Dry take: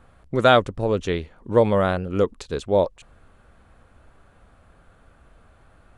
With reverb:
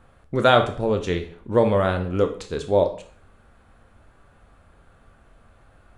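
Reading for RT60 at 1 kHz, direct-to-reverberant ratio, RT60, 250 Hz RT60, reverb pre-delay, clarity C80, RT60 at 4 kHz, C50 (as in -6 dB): 0.50 s, 5.5 dB, 0.50 s, 0.45 s, 6 ms, 15.5 dB, 0.45 s, 11.5 dB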